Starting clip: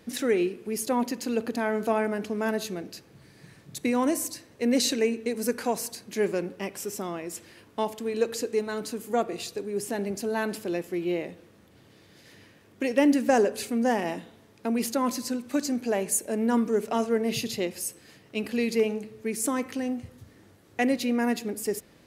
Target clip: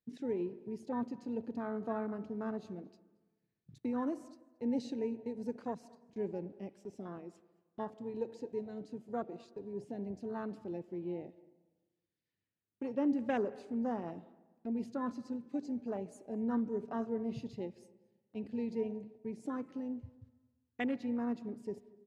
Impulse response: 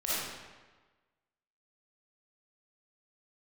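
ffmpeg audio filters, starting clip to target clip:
-filter_complex "[0:a]lowpass=5k,lowshelf=f=180:g=3.5,afwtdn=0.0316,agate=range=-14dB:threshold=-48dB:ratio=16:detection=peak,equalizer=f=590:w=0.52:g=-6,asplit=2[a][b];[b]adelay=227.4,volume=-25dB,highshelf=f=4k:g=-5.12[c];[a][c]amix=inputs=2:normalize=0,asplit=2[d][e];[1:a]atrim=start_sample=2205,lowpass=2.2k,adelay=83[f];[e][f]afir=irnorm=-1:irlink=0,volume=-27.5dB[g];[d][g]amix=inputs=2:normalize=0,volume=-7.5dB"

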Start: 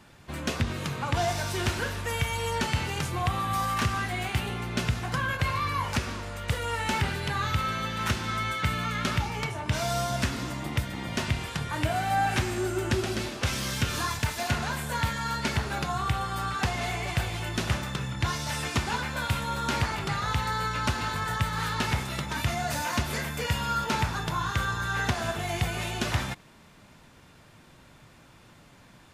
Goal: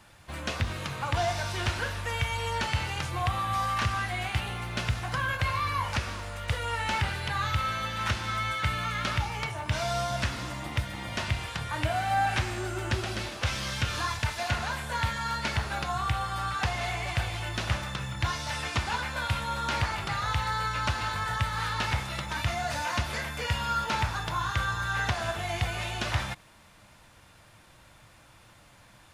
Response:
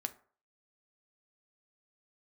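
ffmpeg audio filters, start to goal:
-filter_complex "[0:a]equalizer=f=160:t=o:w=0.33:g=-9,equalizer=f=250:t=o:w=0.33:g=-10,equalizer=f=400:t=o:w=0.33:g=-9,equalizer=f=10k:t=o:w=0.33:g=5,acrusher=bits=9:mode=log:mix=0:aa=0.000001,acrossover=split=6200[a][b];[b]acompressor=threshold=-51dB:ratio=4:attack=1:release=60[c];[a][c]amix=inputs=2:normalize=0"

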